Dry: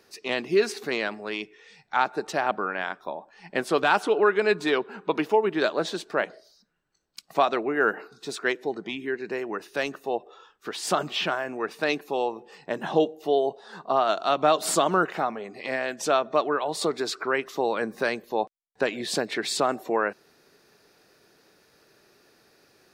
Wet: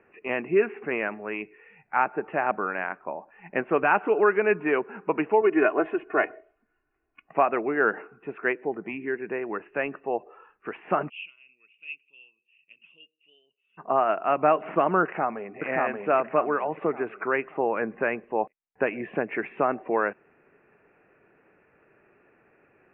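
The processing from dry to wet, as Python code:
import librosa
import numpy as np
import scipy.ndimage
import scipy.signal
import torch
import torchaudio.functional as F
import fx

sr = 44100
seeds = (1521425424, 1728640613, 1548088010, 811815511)

y = fx.comb(x, sr, ms=2.8, depth=0.96, at=(5.41, 7.29))
y = fx.ellip_highpass(y, sr, hz=2700.0, order=4, stop_db=40, at=(11.08, 13.77), fade=0.02)
y = fx.echo_throw(y, sr, start_s=15.03, length_s=0.59, ms=580, feedback_pct=40, wet_db=-1.0)
y = scipy.signal.sosfilt(scipy.signal.butter(16, 2700.0, 'lowpass', fs=sr, output='sos'), y)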